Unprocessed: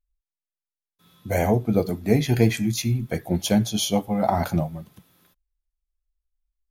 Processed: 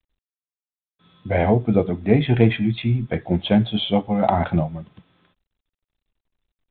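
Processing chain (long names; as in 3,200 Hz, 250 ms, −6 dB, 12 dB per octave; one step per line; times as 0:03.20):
level +3 dB
G.726 40 kbit/s 8,000 Hz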